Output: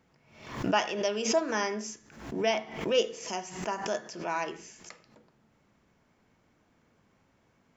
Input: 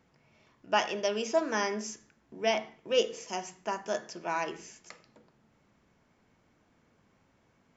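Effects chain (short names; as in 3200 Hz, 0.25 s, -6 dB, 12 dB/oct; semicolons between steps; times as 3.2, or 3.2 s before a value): backwards sustainer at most 84 dB/s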